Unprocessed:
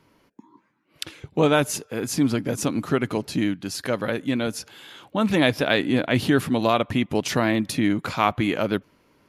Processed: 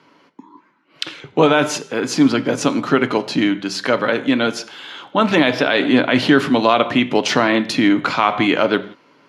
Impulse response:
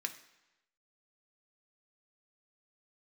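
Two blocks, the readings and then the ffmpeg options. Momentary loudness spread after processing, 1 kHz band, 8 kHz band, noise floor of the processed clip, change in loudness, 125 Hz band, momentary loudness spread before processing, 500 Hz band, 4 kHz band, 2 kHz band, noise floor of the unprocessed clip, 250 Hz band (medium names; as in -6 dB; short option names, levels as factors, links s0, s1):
8 LU, +8.0 dB, +2.5 dB, -54 dBFS, +6.5 dB, 0.0 dB, 10 LU, +6.5 dB, +7.5 dB, +8.0 dB, -63 dBFS, +6.0 dB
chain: -filter_complex "[0:a]acrossover=split=160 6300:gain=0.0794 1 0.0891[s0][s1][s2];[s0][s1][s2]amix=inputs=3:normalize=0,asplit=2[s3][s4];[1:a]atrim=start_sample=2205,atrim=end_sample=4410,asetrate=24696,aresample=44100[s5];[s4][s5]afir=irnorm=-1:irlink=0,volume=0.668[s6];[s3][s6]amix=inputs=2:normalize=0,alimiter=level_in=1.88:limit=0.891:release=50:level=0:latency=1,volume=0.891"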